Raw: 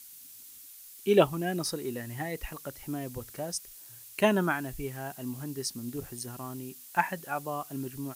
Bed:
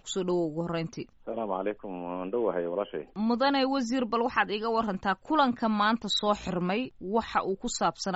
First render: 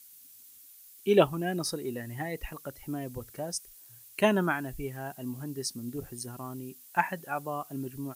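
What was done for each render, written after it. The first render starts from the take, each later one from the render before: denoiser 6 dB, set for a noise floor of -50 dBFS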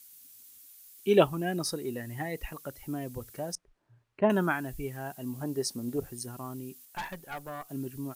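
3.55–4.3 LPF 1100 Hz; 5.41–6 bell 650 Hz +11.5 dB 1.7 oct; 6.85–7.69 tube stage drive 32 dB, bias 0.7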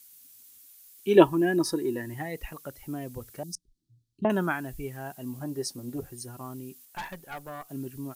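1.15–2.14 small resonant body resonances 330/960/1700 Hz, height 13 dB; 3.43–4.25 inverse Chebyshev band-stop 520–2300 Hz; 5.39–6.41 notch comb 220 Hz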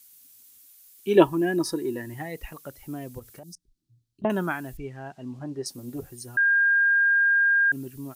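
3.19–4.24 compressor 4:1, threshold -41 dBFS; 4.77–5.66 air absorption 120 m; 6.37–7.72 bleep 1610 Hz -17 dBFS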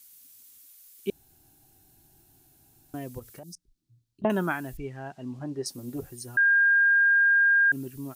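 1.1–2.94 room tone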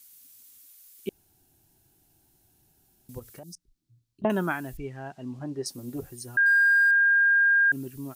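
1.09–3.09 room tone; 6.46–6.91 zero-crossing step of -37 dBFS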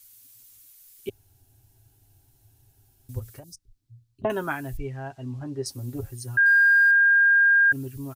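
resonant low shelf 130 Hz +8 dB, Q 3; comb 7.4 ms, depth 43%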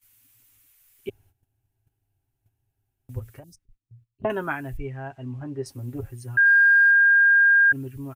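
gate -54 dBFS, range -15 dB; resonant high shelf 3300 Hz -7.5 dB, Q 1.5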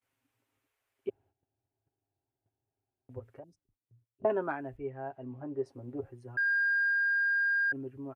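soft clip -14 dBFS, distortion -20 dB; band-pass 530 Hz, Q 1.1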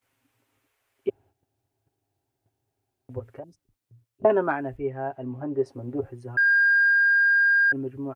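gain +9 dB

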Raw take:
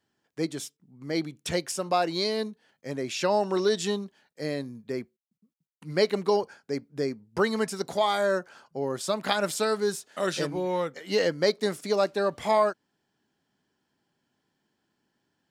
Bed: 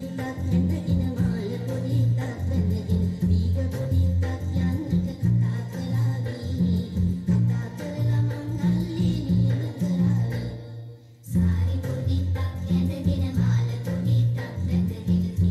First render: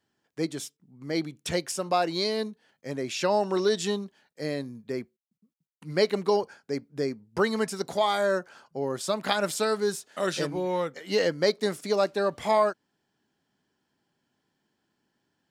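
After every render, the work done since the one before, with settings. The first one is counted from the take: nothing audible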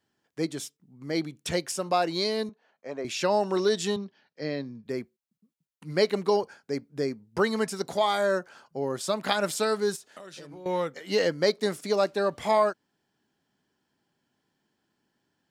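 2.49–3.05 speaker cabinet 300–5500 Hz, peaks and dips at 310 Hz -5 dB, 670 Hz +5 dB, 1100 Hz +4 dB, 1900 Hz -4 dB, 3300 Hz -8 dB, 4900 Hz -9 dB; 3.96–4.86 Chebyshev band-pass 100–5500 Hz, order 4; 9.96–10.66 compressor 16:1, threshold -40 dBFS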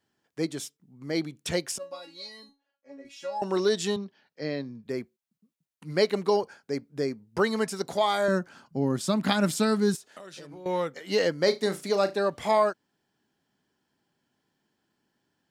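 1.78–3.42 resonator 280 Hz, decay 0.25 s, mix 100%; 8.28–9.95 resonant low shelf 340 Hz +8.5 dB, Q 1.5; 11.43–12.18 flutter echo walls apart 6.2 m, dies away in 0.2 s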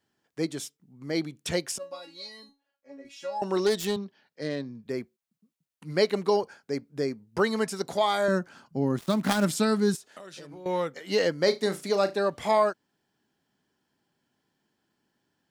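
3.66–4.77 self-modulated delay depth 0.13 ms; 8.98–9.45 switching dead time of 0.1 ms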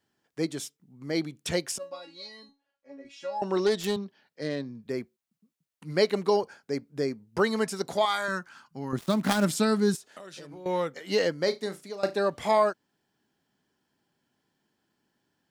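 1.9–3.84 air absorption 54 m; 8.05–8.93 resonant low shelf 800 Hz -9 dB, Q 1.5; 11.13–12.03 fade out, to -16.5 dB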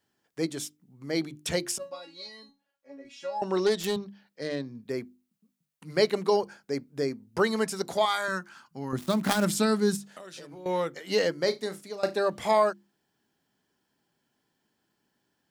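high shelf 8700 Hz +4 dB; notches 50/100/150/200/250/300/350 Hz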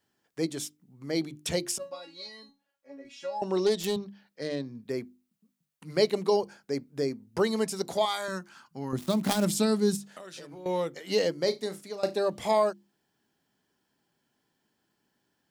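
dynamic EQ 1500 Hz, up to -8 dB, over -45 dBFS, Q 1.4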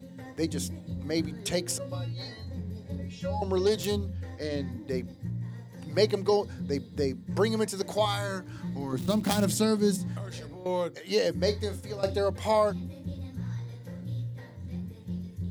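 add bed -13.5 dB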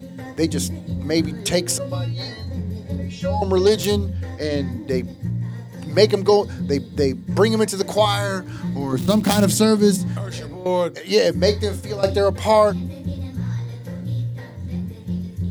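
gain +9.5 dB; limiter -1 dBFS, peak gain reduction 2 dB

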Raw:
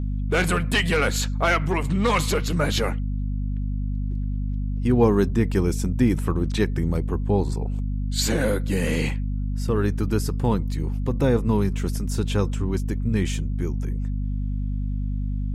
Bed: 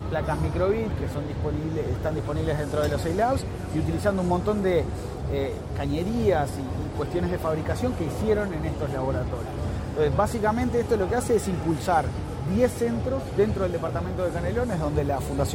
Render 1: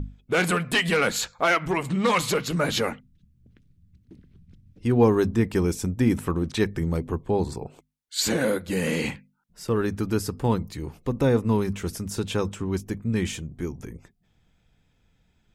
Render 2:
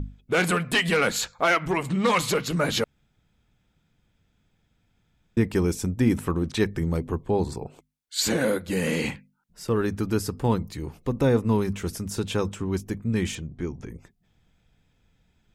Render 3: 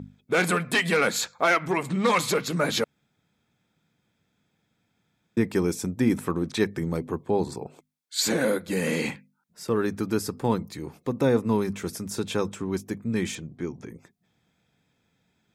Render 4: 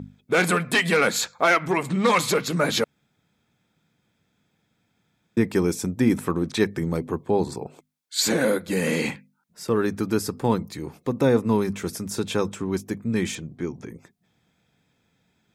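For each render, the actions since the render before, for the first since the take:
notches 50/100/150/200/250 Hz
2.84–5.37 room tone; 13.35–13.9 LPF 5500 Hz
HPF 150 Hz 12 dB/oct; notch 2900 Hz, Q 11
gain +2.5 dB

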